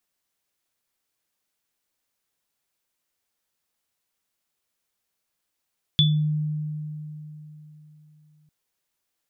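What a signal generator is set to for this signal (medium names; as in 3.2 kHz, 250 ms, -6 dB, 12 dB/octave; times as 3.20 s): sine partials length 2.50 s, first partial 152 Hz, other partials 3.46 kHz, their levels 3 dB, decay 3.63 s, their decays 0.29 s, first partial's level -16 dB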